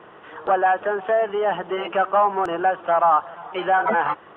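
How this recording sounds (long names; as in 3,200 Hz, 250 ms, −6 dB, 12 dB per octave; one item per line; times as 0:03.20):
background noise floor −46 dBFS
spectral slope +2.0 dB per octave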